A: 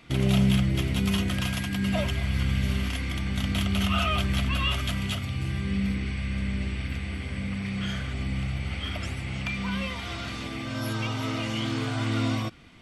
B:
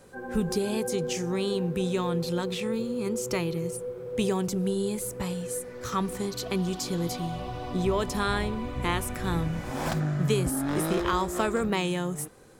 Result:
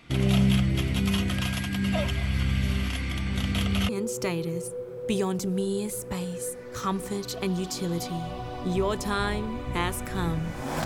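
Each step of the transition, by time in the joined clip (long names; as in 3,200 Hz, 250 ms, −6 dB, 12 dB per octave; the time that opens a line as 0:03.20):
A
0:03.33: mix in B from 0:02.42 0.56 s −15 dB
0:03.89: continue with B from 0:02.98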